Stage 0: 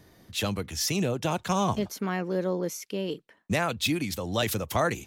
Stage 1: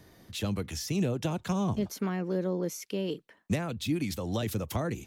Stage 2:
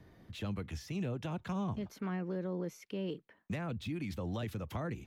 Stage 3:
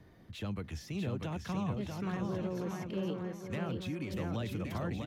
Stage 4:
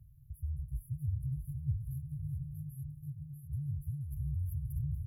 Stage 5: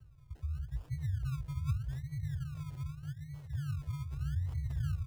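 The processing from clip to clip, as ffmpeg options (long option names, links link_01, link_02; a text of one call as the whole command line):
ffmpeg -i in.wav -filter_complex "[0:a]acrossover=split=410[link_01][link_02];[link_02]acompressor=threshold=-36dB:ratio=6[link_03];[link_01][link_03]amix=inputs=2:normalize=0" out.wav
ffmpeg -i in.wav -filter_complex "[0:a]bass=frequency=250:gain=4,treble=frequency=4000:gain=-13,acrossover=split=810|2100[link_01][link_02][link_03];[link_01]alimiter=level_in=2dB:limit=-24dB:level=0:latency=1:release=177,volume=-2dB[link_04];[link_03]aeval=exprs='clip(val(0),-1,0.0112)':channel_layout=same[link_05];[link_04][link_02][link_05]amix=inputs=3:normalize=0,volume=-4.5dB" out.wav
ffmpeg -i in.wav -af "aecho=1:1:640|1120|1480|1750|1952:0.631|0.398|0.251|0.158|0.1" out.wav
ffmpeg -i in.wav -af "afftfilt=real='re*(1-between(b*sr/4096,180,10000))':imag='im*(1-between(b*sr/4096,180,10000))':win_size=4096:overlap=0.75,equalizer=frequency=270:width=4.6:gain=-5.5,afreqshift=-25,volume=4.5dB" out.wav
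ffmpeg -i in.wav -filter_complex "[0:a]acrossover=split=120[link_01][link_02];[link_01]aecho=1:1:481:0.596[link_03];[link_02]acrusher=samples=30:mix=1:aa=0.000001:lfo=1:lforange=18:lforate=0.82[link_04];[link_03][link_04]amix=inputs=2:normalize=0" out.wav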